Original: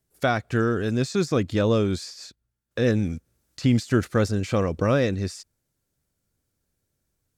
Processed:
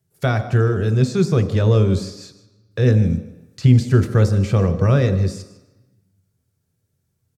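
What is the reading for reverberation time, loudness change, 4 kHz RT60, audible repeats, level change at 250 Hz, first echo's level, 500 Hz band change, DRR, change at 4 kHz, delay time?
1.0 s, +6.5 dB, 0.95 s, 1, +3.5 dB, -17.5 dB, +3.0 dB, 7.5 dB, +0.5 dB, 153 ms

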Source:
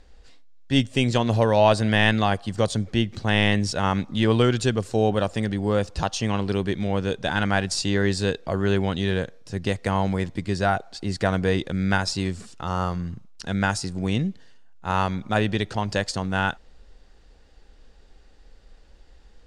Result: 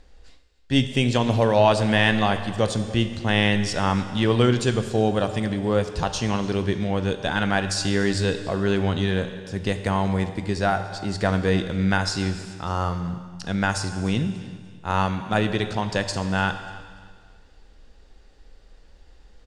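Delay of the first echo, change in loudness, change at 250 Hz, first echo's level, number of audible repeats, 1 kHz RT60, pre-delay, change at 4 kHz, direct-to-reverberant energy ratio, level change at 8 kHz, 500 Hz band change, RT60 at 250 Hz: 294 ms, +0.5 dB, +1.0 dB, -21.0 dB, 2, 1.7 s, 17 ms, +0.5 dB, 8.0 dB, +0.5 dB, +0.5 dB, 1.7 s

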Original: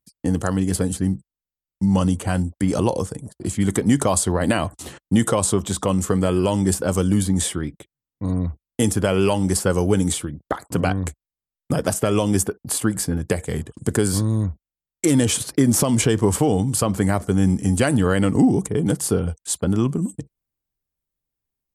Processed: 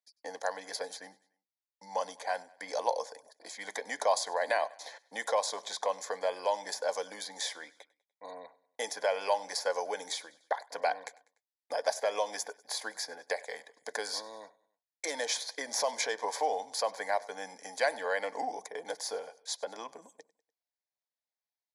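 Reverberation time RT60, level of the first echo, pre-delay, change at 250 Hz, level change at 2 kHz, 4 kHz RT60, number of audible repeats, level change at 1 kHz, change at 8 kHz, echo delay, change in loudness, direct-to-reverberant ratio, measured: no reverb, -22.5 dB, no reverb, -34.5 dB, -6.0 dB, no reverb, 3, -4.5 dB, -14.5 dB, 98 ms, -13.5 dB, no reverb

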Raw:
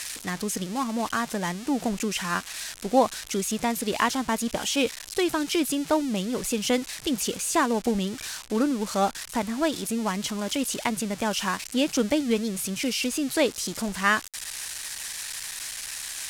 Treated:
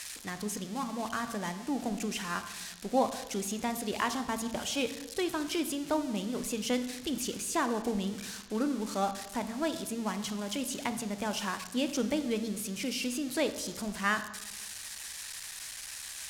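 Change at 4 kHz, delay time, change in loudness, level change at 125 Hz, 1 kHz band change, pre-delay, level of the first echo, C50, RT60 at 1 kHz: -7.0 dB, no echo, -7.0 dB, -6.5 dB, -6.5 dB, 15 ms, no echo, 11.0 dB, 1.0 s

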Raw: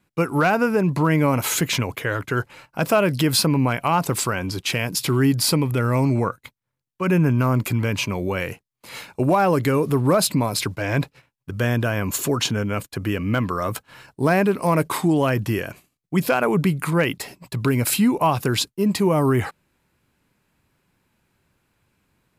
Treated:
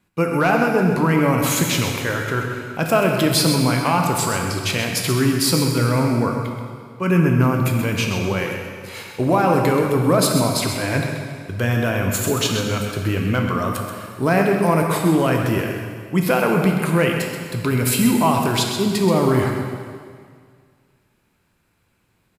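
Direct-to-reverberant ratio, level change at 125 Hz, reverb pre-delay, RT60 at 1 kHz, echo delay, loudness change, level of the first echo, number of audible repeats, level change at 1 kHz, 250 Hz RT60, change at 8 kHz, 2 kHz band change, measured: 1.0 dB, +2.0 dB, 6 ms, 2.0 s, 130 ms, +2.0 dB, -9.0 dB, 1, +2.5 dB, 2.0 s, +2.5 dB, +2.5 dB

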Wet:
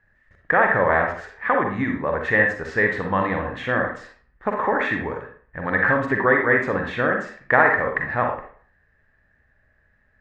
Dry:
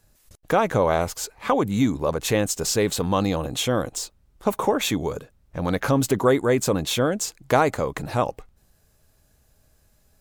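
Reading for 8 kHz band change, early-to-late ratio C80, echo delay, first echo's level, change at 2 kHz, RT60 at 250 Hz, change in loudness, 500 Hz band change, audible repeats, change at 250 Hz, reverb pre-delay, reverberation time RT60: under -25 dB, 9.5 dB, no echo, no echo, +12.5 dB, 0.45 s, +2.0 dB, -0.5 dB, no echo, -3.0 dB, 39 ms, 0.45 s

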